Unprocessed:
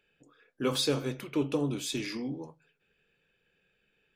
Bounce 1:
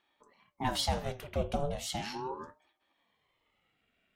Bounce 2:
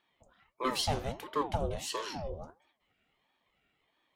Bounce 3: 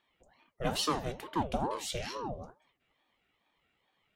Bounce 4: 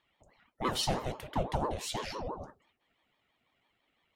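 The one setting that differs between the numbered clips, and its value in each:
ring modulator with a swept carrier, at: 0.37 Hz, 1.5 Hz, 2.3 Hz, 6 Hz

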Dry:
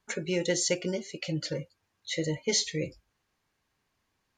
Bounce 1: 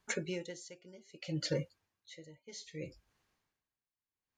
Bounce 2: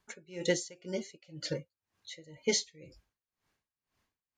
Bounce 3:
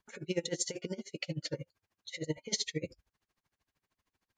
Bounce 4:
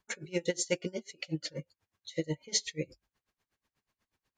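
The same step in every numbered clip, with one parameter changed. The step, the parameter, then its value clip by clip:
logarithmic tremolo, rate: 0.63 Hz, 2 Hz, 13 Hz, 8.2 Hz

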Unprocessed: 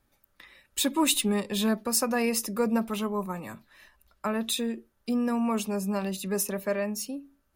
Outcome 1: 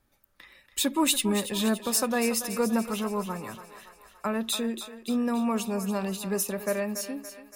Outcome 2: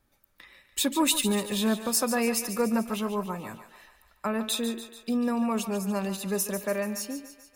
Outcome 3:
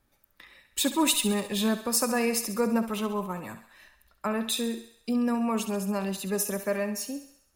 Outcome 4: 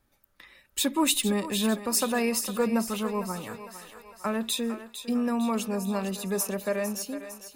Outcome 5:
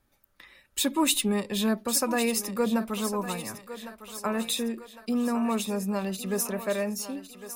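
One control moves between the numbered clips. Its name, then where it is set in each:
thinning echo, time: 284 ms, 145 ms, 67 ms, 455 ms, 1106 ms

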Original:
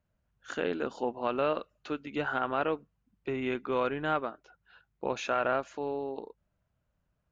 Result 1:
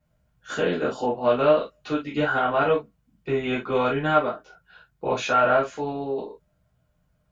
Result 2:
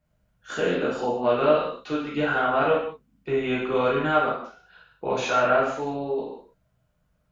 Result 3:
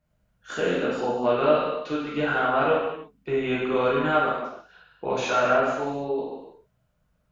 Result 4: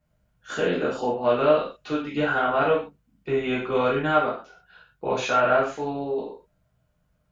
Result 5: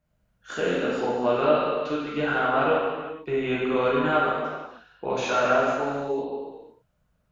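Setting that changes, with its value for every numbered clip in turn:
gated-style reverb, gate: 90 ms, 240 ms, 360 ms, 160 ms, 530 ms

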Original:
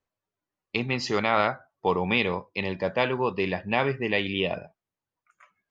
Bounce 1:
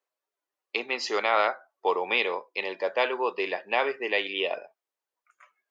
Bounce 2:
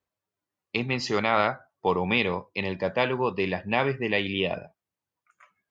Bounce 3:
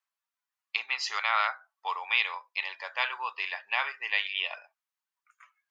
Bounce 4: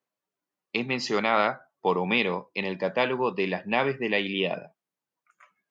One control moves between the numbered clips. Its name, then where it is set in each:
high-pass, cutoff frequency: 380 Hz, 45 Hz, 980 Hz, 150 Hz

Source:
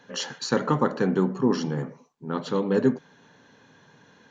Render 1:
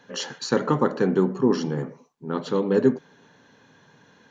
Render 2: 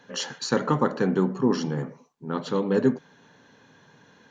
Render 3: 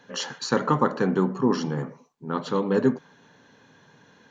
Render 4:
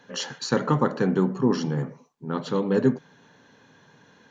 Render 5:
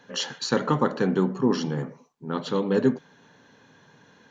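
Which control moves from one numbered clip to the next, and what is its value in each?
dynamic bell, frequency: 380 Hz, 9.3 kHz, 1.1 kHz, 130 Hz, 3.4 kHz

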